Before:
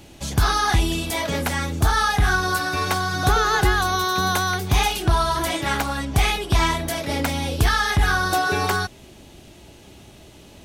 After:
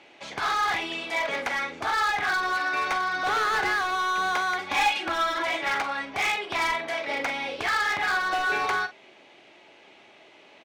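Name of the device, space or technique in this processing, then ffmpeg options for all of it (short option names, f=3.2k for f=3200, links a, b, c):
megaphone: -filter_complex "[0:a]highpass=530,lowpass=3k,equalizer=f=2.2k:t=o:w=0.39:g=7,asoftclip=type=hard:threshold=-20.5dB,asplit=2[a][b];[b]adelay=44,volume=-12dB[c];[a][c]amix=inputs=2:normalize=0,asettb=1/sr,asplit=3[d][e][f];[d]atrim=end=4.584[g];[e]atrim=start=4.58:end=5.43,asetpts=PTS-STARTPTS,afade=t=in:d=0.004:c=qsin,afade=t=out:st=0.846:d=0.004:c=qsin,aecho=1:1:3.6:0.82,atrim=end_sample=37485[h];[f]atrim=start=5.426[i];[g][h]acrossfade=d=0.004:c1=hsin:c2=qsin[j];[j][i]acrossfade=d=0.004:c1=qsin:c2=hsin,volume=-1.5dB"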